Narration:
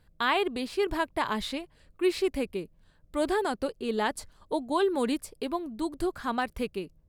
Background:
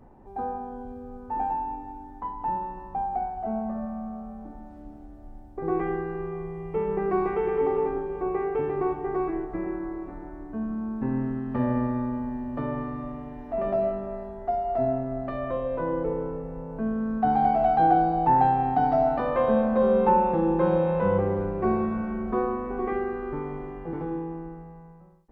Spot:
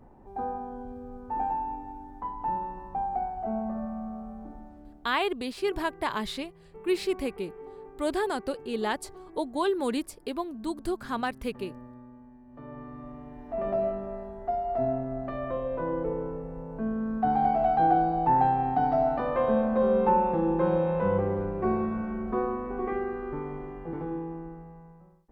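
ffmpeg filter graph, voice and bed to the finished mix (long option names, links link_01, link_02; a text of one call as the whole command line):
ffmpeg -i stem1.wav -i stem2.wav -filter_complex "[0:a]adelay=4850,volume=-1dB[link_01];[1:a]volume=16dB,afade=type=out:start_time=4.52:duration=0.78:silence=0.11885,afade=type=in:start_time=12.46:duration=1.25:silence=0.133352[link_02];[link_01][link_02]amix=inputs=2:normalize=0" out.wav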